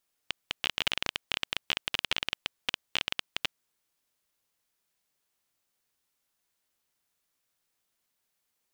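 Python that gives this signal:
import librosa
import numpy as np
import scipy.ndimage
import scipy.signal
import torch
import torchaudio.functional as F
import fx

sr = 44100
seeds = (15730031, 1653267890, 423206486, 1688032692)

y = fx.geiger_clicks(sr, seeds[0], length_s=3.17, per_s=18.0, level_db=-9.5)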